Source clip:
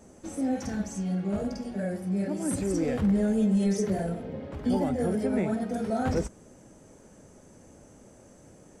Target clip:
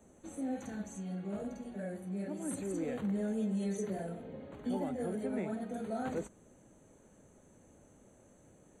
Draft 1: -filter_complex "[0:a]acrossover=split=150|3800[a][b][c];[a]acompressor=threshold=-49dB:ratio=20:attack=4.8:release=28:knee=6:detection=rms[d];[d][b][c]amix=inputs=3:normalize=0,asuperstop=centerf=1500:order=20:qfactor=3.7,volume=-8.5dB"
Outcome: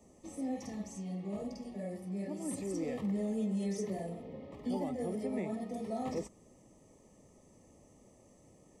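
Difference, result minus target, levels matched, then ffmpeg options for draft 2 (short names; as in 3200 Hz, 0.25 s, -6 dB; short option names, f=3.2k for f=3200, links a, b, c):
2000 Hz band -3.5 dB
-filter_complex "[0:a]acrossover=split=150|3800[a][b][c];[a]acompressor=threshold=-49dB:ratio=20:attack=4.8:release=28:knee=6:detection=rms[d];[d][b][c]amix=inputs=3:normalize=0,asuperstop=centerf=5200:order=20:qfactor=3.7,volume=-8.5dB"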